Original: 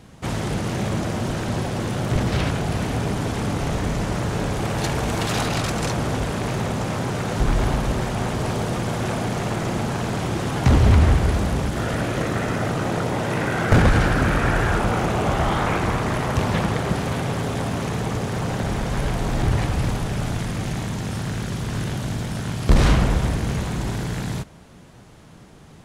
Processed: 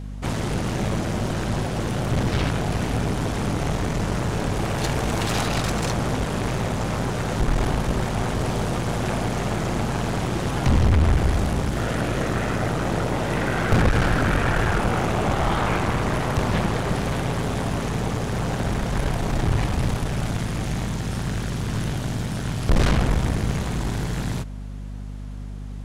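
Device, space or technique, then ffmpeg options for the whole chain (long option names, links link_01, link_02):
valve amplifier with mains hum: -af "aeval=exprs='(tanh(6.31*val(0)+0.55)-tanh(0.55))/6.31':channel_layout=same,aeval=exprs='val(0)+0.02*(sin(2*PI*50*n/s)+sin(2*PI*2*50*n/s)/2+sin(2*PI*3*50*n/s)/3+sin(2*PI*4*50*n/s)/4+sin(2*PI*5*50*n/s)/5)':channel_layout=same,volume=2dB"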